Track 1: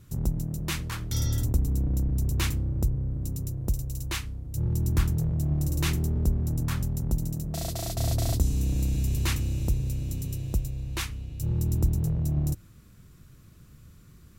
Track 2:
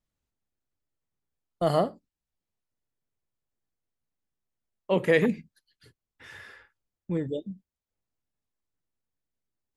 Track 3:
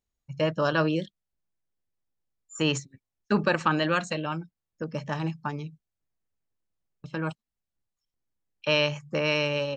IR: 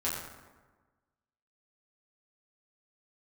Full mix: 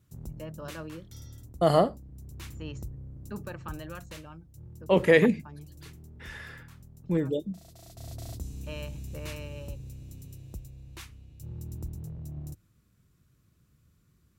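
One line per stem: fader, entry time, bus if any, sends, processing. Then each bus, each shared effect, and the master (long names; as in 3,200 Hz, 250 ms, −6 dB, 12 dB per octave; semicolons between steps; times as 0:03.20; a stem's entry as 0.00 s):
−13.0 dB, 0.00 s, no send, automatic ducking −9 dB, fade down 0.95 s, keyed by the second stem
+2.5 dB, 0.00 s, no send, no processing
−18.0 dB, 0.00 s, no send, spectral tilt −1.5 dB per octave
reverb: not used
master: high-pass filter 44 Hz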